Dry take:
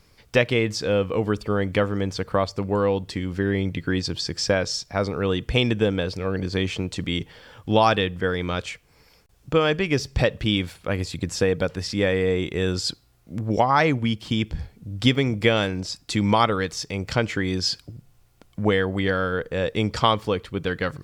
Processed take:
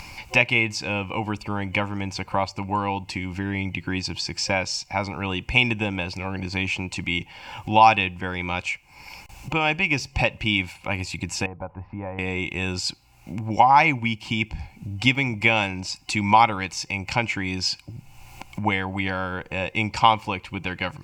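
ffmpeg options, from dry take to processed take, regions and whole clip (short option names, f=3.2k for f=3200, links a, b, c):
-filter_complex "[0:a]asettb=1/sr,asplit=3[a][b][c];[a]atrim=end=11.464[d];[b]atrim=start=11.46:end=12.19,asetpts=PTS-STARTPTS,afade=t=in:d=0.004:c=qsin,afade=t=out:st=0.726:d=0.004:c=qsin,lowpass=f=1.1k:w=0.5412,lowpass=f=1.1k:w=1.3066,equalizer=f=260:w=0.34:g=-10.5[e];[c]atrim=start=12.186[f];[d][e]acrossfade=d=0.004:c1=hsin:c2=qsin[g];[g][f]acrossfade=d=0.004:c1=qsin:c2=hsin,superequalizer=7b=0.355:9b=3.55:12b=3.98:14b=1.41:15b=1.58,acompressor=mode=upward:threshold=-22dB:ratio=2.5,volume=-3.5dB"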